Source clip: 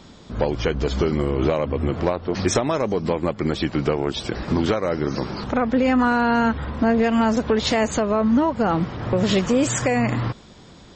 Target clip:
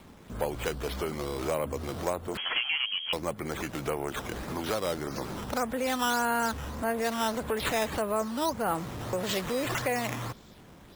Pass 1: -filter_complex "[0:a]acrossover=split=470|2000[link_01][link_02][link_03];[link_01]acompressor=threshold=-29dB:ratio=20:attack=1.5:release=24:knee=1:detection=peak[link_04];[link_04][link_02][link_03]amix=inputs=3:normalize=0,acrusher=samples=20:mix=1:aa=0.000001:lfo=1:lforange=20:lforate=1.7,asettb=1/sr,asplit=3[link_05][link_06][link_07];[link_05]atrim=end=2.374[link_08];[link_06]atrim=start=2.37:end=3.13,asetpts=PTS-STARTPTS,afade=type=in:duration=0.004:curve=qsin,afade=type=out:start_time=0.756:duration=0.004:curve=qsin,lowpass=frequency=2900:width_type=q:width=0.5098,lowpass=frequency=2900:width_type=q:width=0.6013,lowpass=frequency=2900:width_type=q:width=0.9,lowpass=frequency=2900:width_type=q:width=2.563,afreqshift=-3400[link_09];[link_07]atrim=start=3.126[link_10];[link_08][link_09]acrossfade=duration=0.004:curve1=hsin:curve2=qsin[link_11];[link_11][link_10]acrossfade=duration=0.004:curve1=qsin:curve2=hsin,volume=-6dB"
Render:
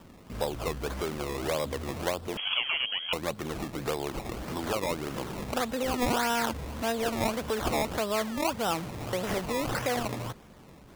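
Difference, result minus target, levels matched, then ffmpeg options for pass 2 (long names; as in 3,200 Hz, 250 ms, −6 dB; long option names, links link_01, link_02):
sample-and-hold swept by an LFO: distortion +8 dB
-filter_complex "[0:a]acrossover=split=470|2000[link_01][link_02][link_03];[link_01]acompressor=threshold=-29dB:ratio=20:attack=1.5:release=24:knee=1:detection=peak[link_04];[link_04][link_02][link_03]amix=inputs=3:normalize=0,acrusher=samples=7:mix=1:aa=0.000001:lfo=1:lforange=7:lforate=1.7,asettb=1/sr,asplit=3[link_05][link_06][link_07];[link_05]atrim=end=2.374[link_08];[link_06]atrim=start=2.37:end=3.13,asetpts=PTS-STARTPTS,afade=type=in:duration=0.004:curve=qsin,afade=type=out:start_time=0.756:duration=0.004:curve=qsin,lowpass=frequency=2900:width_type=q:width=0.5098,lowpass=frequency=2900:width_type=q:width=0.6013,lowpass=frequency=2900:width_type=q:width=0.9,lowpass=frequency=2900:width_type=q:width=2.563,afreqshift=-3400[link_09];[link_07]atrim=start=3.126[link_10];[link_08][link_09]acrossfade=duration=0.004:curve1=hsin:curve2=qsin[link_11];[link_11][link_10]acrossfade=duration=0.004:curve1=qsin:curve2=hsin,volume=-6dB"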